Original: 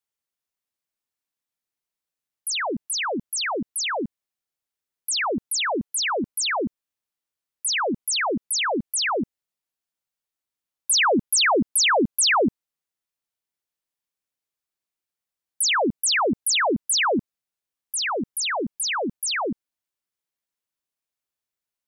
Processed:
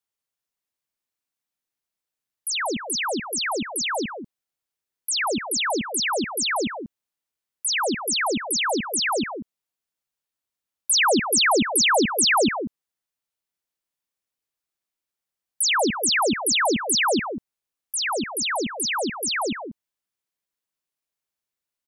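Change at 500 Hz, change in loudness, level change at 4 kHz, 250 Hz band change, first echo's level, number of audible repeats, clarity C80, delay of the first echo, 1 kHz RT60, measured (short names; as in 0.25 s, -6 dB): +0.5 dB, +0.5 dB, +0.5 dB, +0.5 dB, -9.0 dB, 1, none, 0.188 s, none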